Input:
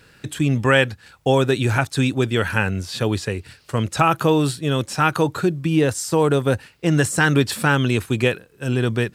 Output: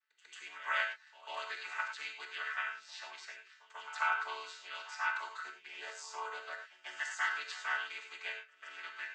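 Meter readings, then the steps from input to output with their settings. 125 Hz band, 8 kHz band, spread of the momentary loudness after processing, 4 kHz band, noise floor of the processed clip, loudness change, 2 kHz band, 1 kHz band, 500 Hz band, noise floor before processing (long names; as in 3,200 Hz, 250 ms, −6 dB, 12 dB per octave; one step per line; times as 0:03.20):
below −40 dB, −22.0 dB, 14 LU, −16.5 dB, −65 dBFS, −19.0 dB, −12.0 dB, −16.0 dB, −32.5 dB, −53 dBFS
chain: channel vocoder with a chord as carrier major triad, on D3
noise gate −50 dBFS, range −19 dB
high-pass filter 1,100 Hz 24 dB per octave
echo ahead of the sound 143 ms −16 dB
reverb whose tail is shaped and stops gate 130 ms flat, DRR 3.5 dB
level −6.5 dB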